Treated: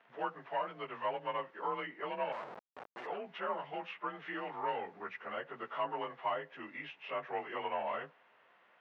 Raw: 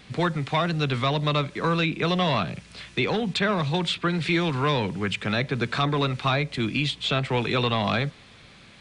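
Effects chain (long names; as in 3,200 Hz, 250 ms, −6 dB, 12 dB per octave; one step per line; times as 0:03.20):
partials spread apart or drawn together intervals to 91%
0:02.32–0:03.07: comparator with hysteresis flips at −36.5 dBFS
four-pole ladder band-pass 910 Hz, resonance 20%
level +3.5 dB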